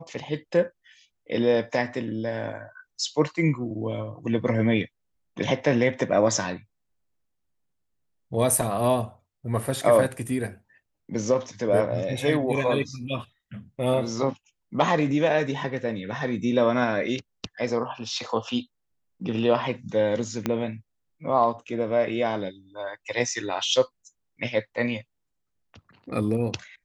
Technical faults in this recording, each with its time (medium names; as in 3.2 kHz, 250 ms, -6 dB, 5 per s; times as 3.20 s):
20.46 s: pop -11 dBFS